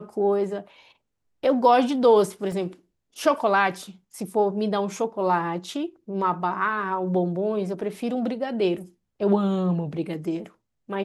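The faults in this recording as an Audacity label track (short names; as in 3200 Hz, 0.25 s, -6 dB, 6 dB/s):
2.520000	2.520000	gap 2.4 ms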